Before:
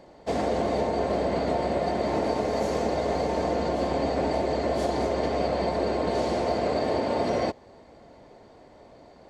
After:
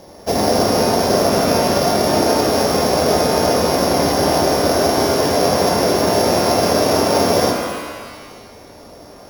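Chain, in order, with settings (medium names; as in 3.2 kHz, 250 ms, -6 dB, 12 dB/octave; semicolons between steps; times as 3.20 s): sorted samples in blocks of 8 samples; pitch-shifted reverb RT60 1.5 s, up +12 st, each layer -8 dB, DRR 1.5 dB; trim +8.5 dB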